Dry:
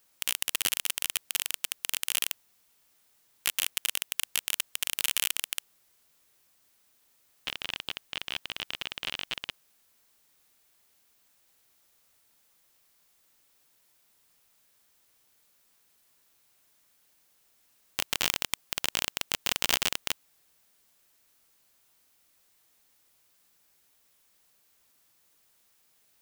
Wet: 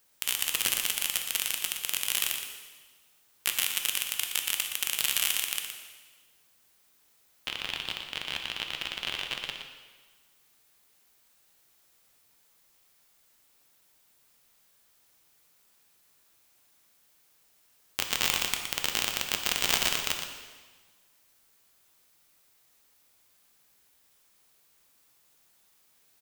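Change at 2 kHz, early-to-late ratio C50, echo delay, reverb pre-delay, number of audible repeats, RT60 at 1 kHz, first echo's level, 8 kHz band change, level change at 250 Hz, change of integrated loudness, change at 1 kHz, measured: +2.0 dB, 4.0 dB, 118 ms, 5 ms, 1, 1.4 s, -8.5 dB, +1.5 dB, +1.5 dB, +1.5 dB, +2.0 dB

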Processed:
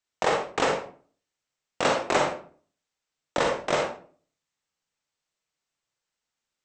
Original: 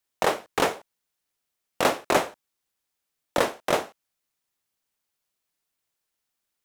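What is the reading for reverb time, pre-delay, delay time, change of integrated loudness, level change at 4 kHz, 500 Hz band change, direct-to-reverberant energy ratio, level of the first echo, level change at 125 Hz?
0.45 s, 38 ms, no echo, -0.5 dB, -0.5 dB, 0.0 dB, 1.0 dB, no echo, +1.0 dB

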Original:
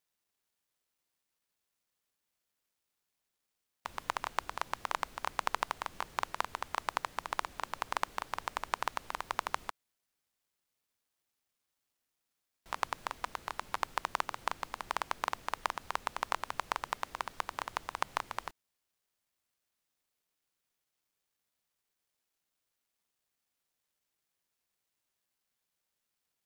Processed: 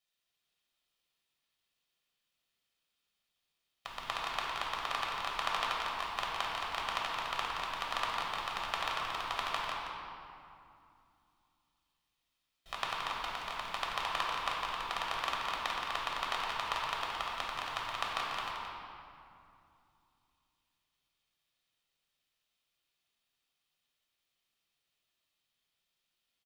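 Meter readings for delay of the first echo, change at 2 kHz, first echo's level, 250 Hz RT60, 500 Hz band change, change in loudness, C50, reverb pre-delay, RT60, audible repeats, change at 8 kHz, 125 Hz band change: 173 ms, +2.5 dB, -7.5 dB, 3.7 s, +0.5 dB, +2.0 dB, -1.5 dB, 3 ms, 2.5 s, 1, -1.5 dB, +1.5 dB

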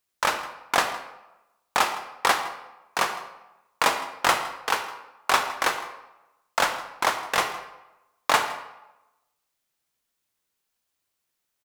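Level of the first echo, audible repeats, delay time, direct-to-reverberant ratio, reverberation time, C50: -18.5 dB, 1, 161 ms, 7.0 dB, 1.0 s, 8.5 dB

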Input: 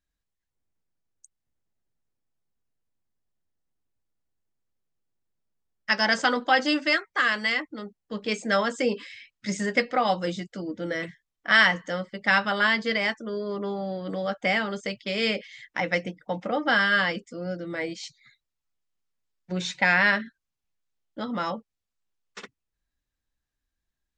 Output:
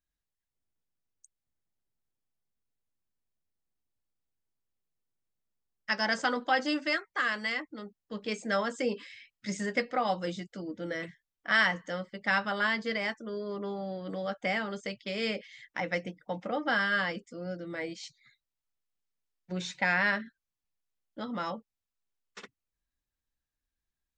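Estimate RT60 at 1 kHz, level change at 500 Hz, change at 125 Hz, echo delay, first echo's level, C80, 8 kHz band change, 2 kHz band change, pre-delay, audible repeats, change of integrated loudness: no reverb, -5.5 dB, -5.5 dB, no echo, no echo, no reverb, -6.0 dB, -6.5 dB, no reverb, no echo, -6.5 dB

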